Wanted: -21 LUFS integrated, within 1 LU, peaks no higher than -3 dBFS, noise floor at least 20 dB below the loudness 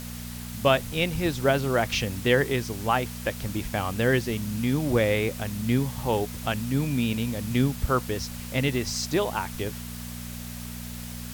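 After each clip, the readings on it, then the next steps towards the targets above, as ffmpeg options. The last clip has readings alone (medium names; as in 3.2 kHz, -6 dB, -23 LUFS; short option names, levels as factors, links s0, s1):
hum 60 Hz; highest harmonic 240 Hz; hum level -35 dBFS; noise floor -37 dBFS; noise floor target -47 dBFS; loudness -27.0 LUFS; peak level -7.0 dBFS; loudness target -21.0 LUFS
-> -af "bandreject=f=60:t=h:w=4,bandreject=f=120:t=h:w=4,bandreject=f=180:t=h:w=4,bandreject=f=240:t=h:w=4"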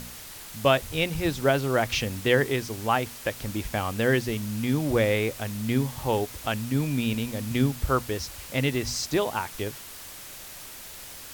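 hum not found; noise floor -42 dBFS; noise floor target -47 dBFS
-> -af "afftdn=nr=6:nf=-42"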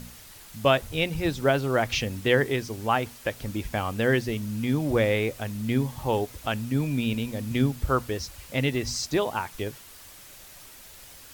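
noise floor -48 dBFS; loudness -27.0 LUFS; peak level -7.0 dBFS; loudness target -21.0 LUFS
-> -af "volume=2,alimiter=limit=0.708:level=0:latency=1"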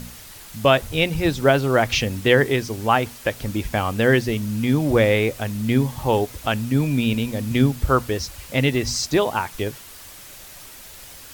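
loudness -21.0 LUFS; peak level -3.0 dBFS; noise floor -42 dBFS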